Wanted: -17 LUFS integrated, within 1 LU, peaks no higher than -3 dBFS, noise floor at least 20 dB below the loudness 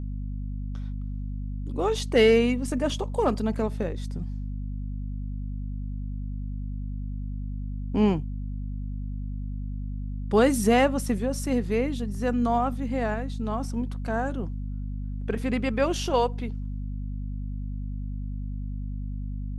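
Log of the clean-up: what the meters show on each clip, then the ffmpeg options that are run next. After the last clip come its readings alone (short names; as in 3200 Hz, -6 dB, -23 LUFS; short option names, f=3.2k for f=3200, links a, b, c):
hum 50 Hz; harmonics up to 250 Hz; hum level -29 dBFS; loudness -28.5 LUFS; peak -8.5 dBFS; loudness target -17.0 LUFS
-> -af "bandreject=f=50:t=h:w=4,bandreject=f=100:t=h:w=4,bandreject=f=150:t=h:w=4,bandreject=f=200:t=h:w=4,bandreject=f=250:t=h:w=4"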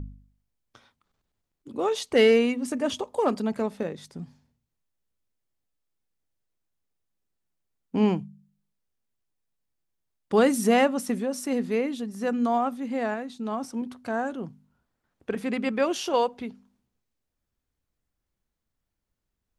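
hum none; loudness -26.0 LUFS; peak -8.5 dBFS; loudness target -17.0 LUFS
-> -af "volume=9dB,alimiter=limit=-3dB:level=0:latency=1"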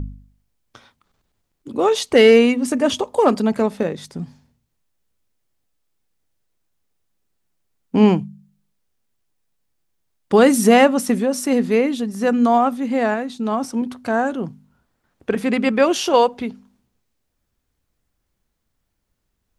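loudness -17.5 LUFS; peak -3.0 dBFS; noise floor -74 dBFS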